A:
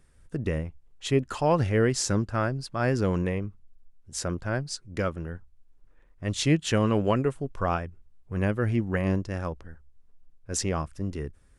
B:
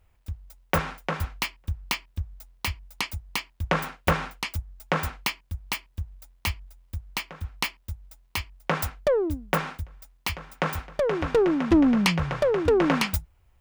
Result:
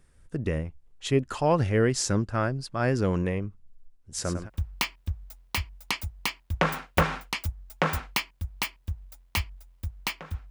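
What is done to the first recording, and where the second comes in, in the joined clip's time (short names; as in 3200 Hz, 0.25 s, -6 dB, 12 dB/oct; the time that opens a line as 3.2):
A
3.56–4.5 feedback echo 0.102 s, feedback 17%, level -8 dB
4.45 switch to B from 1.55 s, crossfade 0.10 s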